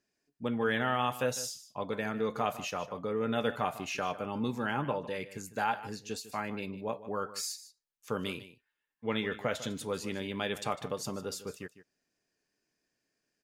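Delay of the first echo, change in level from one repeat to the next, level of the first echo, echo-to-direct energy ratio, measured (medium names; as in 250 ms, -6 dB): 152 ms, no regular repeats, -15.0 dB, -15.0 dB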